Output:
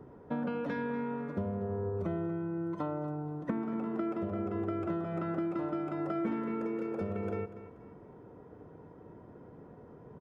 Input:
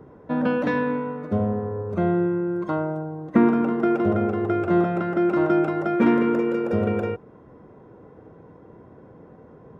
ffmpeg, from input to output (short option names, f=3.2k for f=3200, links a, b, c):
-af "acompressor=threshold=-26dB:ratio=10,aecho=1:1:230|460|690:0.2|0.0718|0.0259,asetrate=42336,aresample=44100,volume=-5dB"